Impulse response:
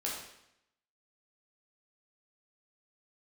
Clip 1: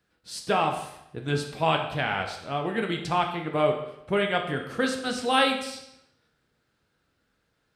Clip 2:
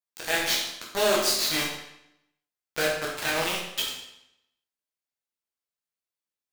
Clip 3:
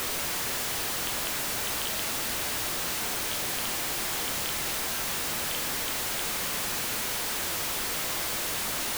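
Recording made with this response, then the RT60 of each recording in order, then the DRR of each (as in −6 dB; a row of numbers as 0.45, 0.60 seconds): 2; 0.80, 0.80, 0.80 seconds; 3.0, −4.5, 7.5 decibels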